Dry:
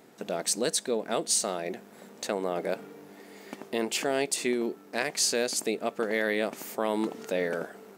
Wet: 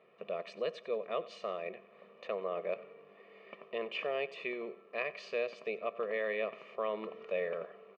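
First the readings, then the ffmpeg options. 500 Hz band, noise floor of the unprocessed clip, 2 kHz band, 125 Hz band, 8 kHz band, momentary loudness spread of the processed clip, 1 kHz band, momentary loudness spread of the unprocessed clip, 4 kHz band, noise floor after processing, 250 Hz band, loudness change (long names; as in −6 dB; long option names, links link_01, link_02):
−5.5 dB, −52 dBFS, −7.0 dB, −14.0 dB, below −35 dB, 12 LU, −7.5 dB, 13 LU, −15.0 dB, −60 dBFS, −16.5 dB, −8.5 dB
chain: -filter_complex "[0:a]highpass=230,equalizer=frequency=260:width_type=q:width=4:gain=-9,equalizer=frequency=770:width_type=q:width=4:gain=-7,equalizer=frequency=1100:width_type=q:width=4:gain=4,equalizer=frequency=1600:width_type=q:width=4:gain=-10,equalizer=frequency=2600:width_type=q:width=4:gain=7,lowpass=frequency=2700:width=0.5412,lowpass=frequency=2700:width=1.3066,aecho=1:1:1.7:0.7,asplit=2[link_01][link_02];[link_02]aecho=0:1:93|186|279:0.126|0.0516|0.0212[link_03];[link_01][link_03]amix=inputs=2:normalize=0,volume=-7dB"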